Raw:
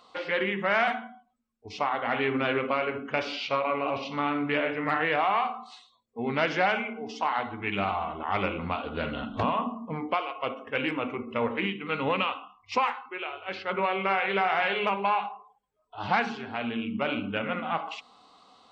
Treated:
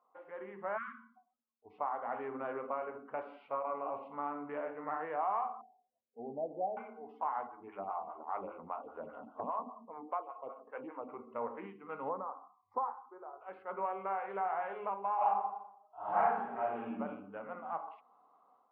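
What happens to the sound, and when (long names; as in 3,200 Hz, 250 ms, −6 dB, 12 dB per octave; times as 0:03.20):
0:00.77–0:01.17: time-frequency box erased 270–1,000 Hz
0:05.61–0:06.77: Butterworth low-pass 770 Hz 72 dB per octave
0:07.47–0:11.09: phaser with staggered stages 5 Hz
0:12.09–0:13.41: Butterworth band-reject 2,800 Hz, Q 0.54
0:15.16–0:16.96: thrown reverb, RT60 0.82 s, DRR −12 dB
whole clip: automatic gain control gain up to 8 dB; low-pass filter 1,000 Hz 24 dB per octave; first difference; level +4.5 dB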